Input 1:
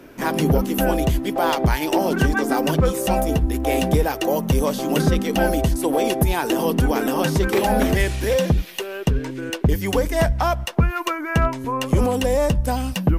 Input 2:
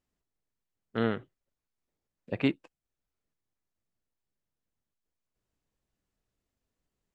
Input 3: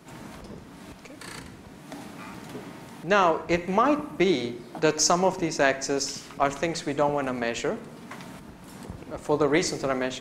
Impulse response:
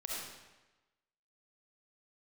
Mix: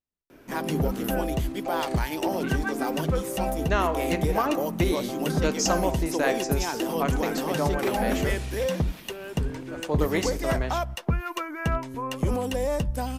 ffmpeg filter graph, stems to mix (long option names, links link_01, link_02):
-filter_complex "[0:a]adelay=300,volume=-7.5dB[link_01];[1:a]volume=-10.5dB[link_02];[2:a]adelay=600,volume=-4.5dB[link_03];[link_01][link_02][link_03]amix=inputs=3:normalize=0"